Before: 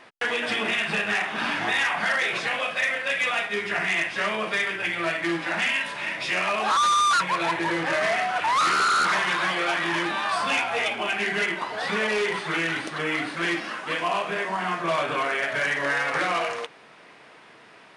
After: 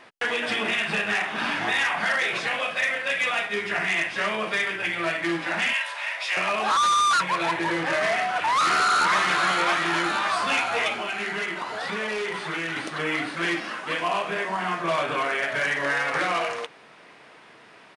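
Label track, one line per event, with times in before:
5.730000	6.370000	high-pass 600 Hz 24 dB/octave
8.130000	9.160000	echo throw 570 ms, feedback 65%, level -5.5 dB
10.950000	12.770000	compression 2:1, threshold -28 dBFS

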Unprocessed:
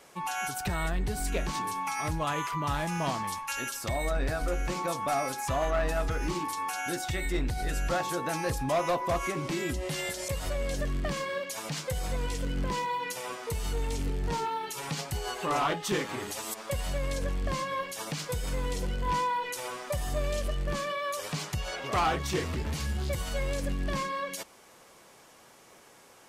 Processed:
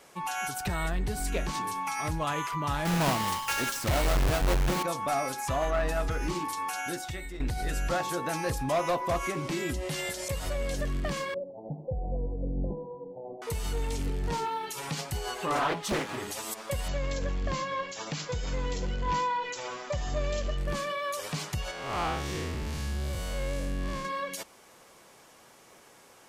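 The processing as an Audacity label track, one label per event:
2.850000	4.830000	square wave that keeps the level
6.790000	7.400000	fade out, to -13.5 dB
11.340000	13.420000	steep low-pass 810 Hz 72 dB/octave
15.550000	16.180000	loudspeaker Doppler distortion depth 0.9 ms
16.880000	20.580000	brick-wall FIR low-pass 7.7 kHz
21.710000	24.050000	spectral blur width 179 ms

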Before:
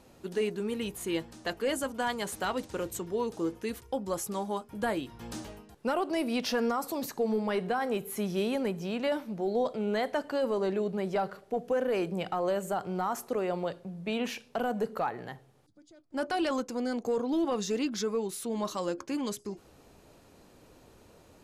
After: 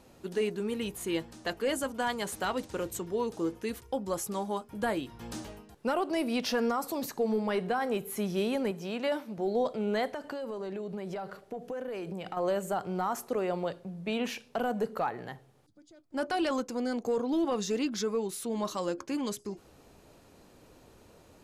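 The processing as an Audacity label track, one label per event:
8.710000	9.380000	high-pass 220 Hz 6 dB/octave
10.060000	12.370000	compression 12:1, threshold -33 dBFS

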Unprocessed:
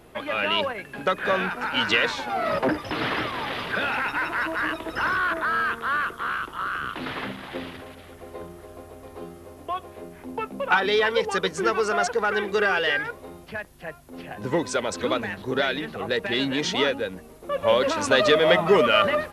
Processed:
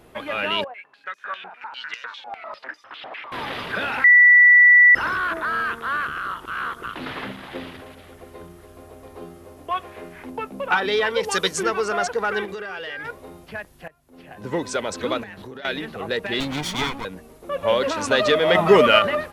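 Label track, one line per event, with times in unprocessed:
0.640000	3.320000	step-sequenced band-pass 10 Hz 710–5900 Hz
4.040000	4.950000	bleep 1.96 kHz -8 dBFS
6.070000	6.860000	reverse
8.240000	8.820000	peaking EQ 620 Hz -5 dB 1.5 oct
9.710000	10.300000	peaking EQ 2 kHz +9.5 dB 1.9 oct
11.230000	11.630000	treble shelf 3.1 kHz +12 dB
12.450000	13.050000	compression, threshold -29 dBFS
13.880000	14.700000	fade in, from -20.5 dB
15.230000	15.650000	compression 10:1, threshold -34 dBFS
16.400000	17.050000	comb filter that takes the minimum delay 0.89 ms
18.550000	18.990000	gain +4.5 dB

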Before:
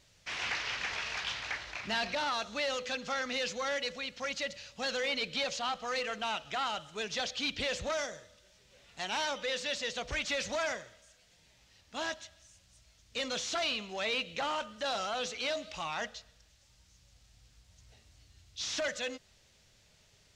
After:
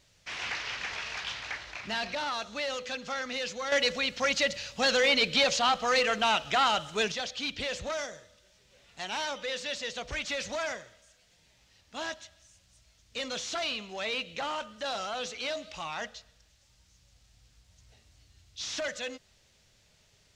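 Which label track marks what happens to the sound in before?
3.720000	7.120000	gain +9 dB

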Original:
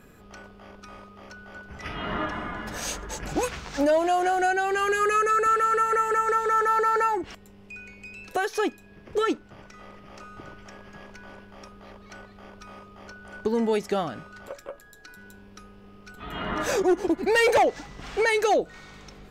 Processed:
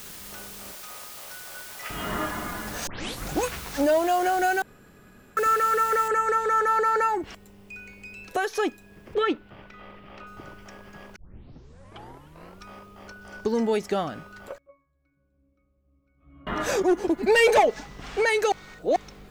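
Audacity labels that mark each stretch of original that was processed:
0.720000	1.900000	inverse Chebyshev high-pass stop band from 150 Hz, stop band 60 dB
2.870000	2.870000	tape start 0.44 s
4.620000	5.370000	room tone
6.080000	6.080000	noise floor step -42 dB -69 dB
9.140000	10.270000	resonant high shelf 4.7 kHz -12 dB, Q 1.5
11.160000	11.160000	tape start 1.49 s
13.210000	13.630000	peaking EQ 5.4 kHz +8.5 dB 0.51 oct
14.580000	16.470000	pitch-class resonator C#, decay 0.51 s
17.210000	17.840000	comb 4.7 ms, depth 58%
18.520000	18.960000	reverse

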